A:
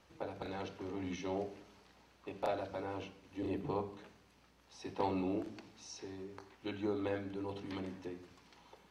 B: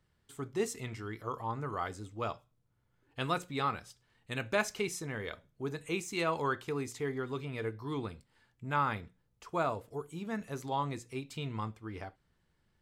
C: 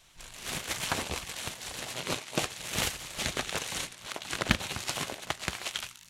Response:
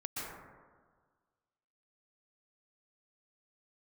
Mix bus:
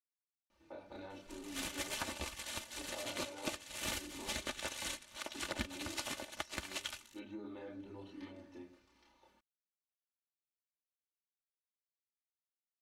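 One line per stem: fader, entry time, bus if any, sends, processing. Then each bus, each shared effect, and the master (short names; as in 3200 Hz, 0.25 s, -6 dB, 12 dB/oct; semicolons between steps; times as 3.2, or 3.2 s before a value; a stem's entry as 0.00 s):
-3.5 dB, 0.50 s, bus A, no send, noise-modulated level, depth 60%
off
0.0 dB, 1.10 s, no bus, no send, soft clip -15.5 dBFS, distortion -15 dB; upward expander 1.5:1, over -48 dBFS
bus A: 0.0 dB, chorus voices 4, 0.49 Hz, delay 29 ms, depth 4.6 ms; limiter -40.5 dBFS, peak gain reduction 10 dB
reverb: off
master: comb 3.4 ms, depth 69%; compressor 5:1, threshold -37 dBFS, peak gain reduction 14 dB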